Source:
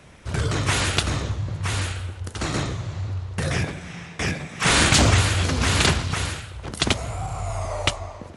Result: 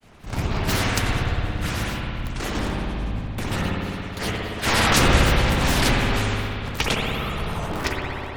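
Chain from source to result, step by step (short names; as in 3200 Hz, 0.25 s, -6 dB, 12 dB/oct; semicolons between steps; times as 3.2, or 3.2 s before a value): cycle switcher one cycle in 3, inverted; grains, grains 29/s, spray 16 ms, pitch spread up and down by 12 st; spring tank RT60 2.7 s, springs 58 ms, chirp 65 ms, DRR -2 dB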